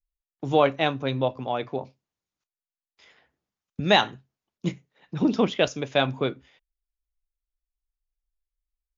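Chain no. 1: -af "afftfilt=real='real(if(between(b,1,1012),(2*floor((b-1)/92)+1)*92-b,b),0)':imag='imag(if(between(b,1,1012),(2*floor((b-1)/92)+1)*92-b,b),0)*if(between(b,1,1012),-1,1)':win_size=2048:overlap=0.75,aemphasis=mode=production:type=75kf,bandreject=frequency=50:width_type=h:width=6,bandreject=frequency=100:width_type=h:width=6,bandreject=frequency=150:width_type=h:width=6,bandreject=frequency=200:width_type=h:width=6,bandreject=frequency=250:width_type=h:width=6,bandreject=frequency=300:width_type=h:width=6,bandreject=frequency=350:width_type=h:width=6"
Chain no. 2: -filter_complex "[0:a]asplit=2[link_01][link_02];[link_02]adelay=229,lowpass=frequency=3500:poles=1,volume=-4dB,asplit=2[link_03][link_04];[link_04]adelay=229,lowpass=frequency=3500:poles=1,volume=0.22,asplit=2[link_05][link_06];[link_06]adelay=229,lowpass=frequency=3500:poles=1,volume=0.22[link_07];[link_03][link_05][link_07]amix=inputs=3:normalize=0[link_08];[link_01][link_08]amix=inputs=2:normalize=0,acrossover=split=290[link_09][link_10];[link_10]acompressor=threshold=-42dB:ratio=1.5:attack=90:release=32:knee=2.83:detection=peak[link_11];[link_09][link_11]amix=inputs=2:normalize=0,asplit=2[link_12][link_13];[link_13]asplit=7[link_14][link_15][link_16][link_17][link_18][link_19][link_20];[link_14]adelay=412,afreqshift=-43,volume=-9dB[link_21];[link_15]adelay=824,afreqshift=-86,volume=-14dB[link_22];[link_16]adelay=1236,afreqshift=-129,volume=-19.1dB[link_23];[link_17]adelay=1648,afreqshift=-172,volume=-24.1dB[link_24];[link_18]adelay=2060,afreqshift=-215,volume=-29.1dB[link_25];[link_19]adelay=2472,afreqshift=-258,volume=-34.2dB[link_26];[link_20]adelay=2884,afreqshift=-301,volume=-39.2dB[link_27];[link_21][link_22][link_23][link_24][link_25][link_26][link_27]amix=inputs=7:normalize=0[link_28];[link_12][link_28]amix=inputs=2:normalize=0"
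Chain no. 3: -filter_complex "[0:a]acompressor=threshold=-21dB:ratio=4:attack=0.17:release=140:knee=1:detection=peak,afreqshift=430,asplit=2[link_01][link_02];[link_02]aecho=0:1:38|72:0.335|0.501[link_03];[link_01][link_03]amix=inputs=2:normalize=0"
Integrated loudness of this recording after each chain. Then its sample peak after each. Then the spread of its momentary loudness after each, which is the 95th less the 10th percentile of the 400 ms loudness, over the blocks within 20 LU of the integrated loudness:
−21.5, −28.0, −30.0 LKFS; −1.5, −11.0, −14.0 dBFS; 15, 19, 11 LU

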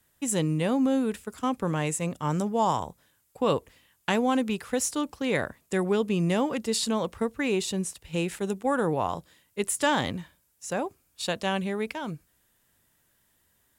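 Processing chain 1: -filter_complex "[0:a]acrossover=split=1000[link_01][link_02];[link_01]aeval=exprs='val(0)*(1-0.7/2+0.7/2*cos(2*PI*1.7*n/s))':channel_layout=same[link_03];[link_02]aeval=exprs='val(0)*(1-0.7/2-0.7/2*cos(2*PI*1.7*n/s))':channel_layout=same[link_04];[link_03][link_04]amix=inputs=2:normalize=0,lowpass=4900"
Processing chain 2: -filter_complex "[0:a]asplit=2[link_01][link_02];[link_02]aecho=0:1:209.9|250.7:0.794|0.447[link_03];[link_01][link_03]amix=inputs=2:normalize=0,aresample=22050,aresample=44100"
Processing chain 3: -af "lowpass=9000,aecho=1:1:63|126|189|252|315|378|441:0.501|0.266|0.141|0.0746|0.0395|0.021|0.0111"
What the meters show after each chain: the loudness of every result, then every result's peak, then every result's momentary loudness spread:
−31.5, −25.5, −27.0 LKFS; −15.0, −9.0, −10.5 dBFS; 10, 9, 10 LU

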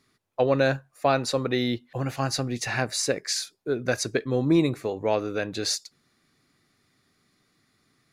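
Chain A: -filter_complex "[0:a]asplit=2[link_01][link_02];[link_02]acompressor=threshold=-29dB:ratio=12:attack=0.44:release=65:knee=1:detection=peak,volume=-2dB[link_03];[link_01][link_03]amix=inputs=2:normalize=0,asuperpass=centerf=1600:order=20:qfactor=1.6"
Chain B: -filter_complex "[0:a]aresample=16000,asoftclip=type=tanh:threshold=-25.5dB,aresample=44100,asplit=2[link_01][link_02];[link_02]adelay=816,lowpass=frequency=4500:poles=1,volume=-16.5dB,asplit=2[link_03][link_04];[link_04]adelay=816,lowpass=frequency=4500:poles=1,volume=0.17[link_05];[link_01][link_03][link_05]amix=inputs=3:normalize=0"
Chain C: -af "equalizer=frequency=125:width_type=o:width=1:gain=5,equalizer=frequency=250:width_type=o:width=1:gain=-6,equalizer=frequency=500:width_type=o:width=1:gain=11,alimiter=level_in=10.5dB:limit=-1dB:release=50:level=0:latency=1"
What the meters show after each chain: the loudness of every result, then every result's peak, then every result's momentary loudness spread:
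−36.0, −31.5, −13.5 LKFS; −15.5, −21.0, −1.0 dBFS; 15, 16, 6 LU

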